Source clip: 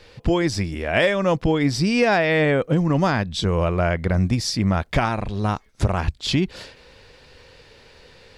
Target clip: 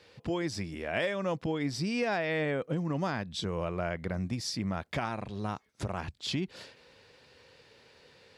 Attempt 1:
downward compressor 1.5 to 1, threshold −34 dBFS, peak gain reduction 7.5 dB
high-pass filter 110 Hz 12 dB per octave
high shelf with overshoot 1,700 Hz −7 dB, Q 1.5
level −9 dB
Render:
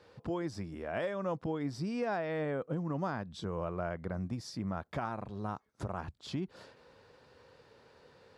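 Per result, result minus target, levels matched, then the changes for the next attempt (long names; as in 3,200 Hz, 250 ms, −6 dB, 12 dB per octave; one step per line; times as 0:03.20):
4,000 Hz band −7.5 dB; downward compressor: peak gain reduction +3.5 dB
remove: high shelf with overshoot 1,700 Hz −7 dB, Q 1.5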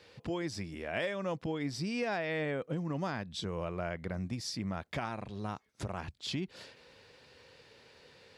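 downward compressor: peak gain reduction +3.5 dB
change: downward compressor 1.5 to 1, threshold −23 dBFS, peak gain reduction 4 dB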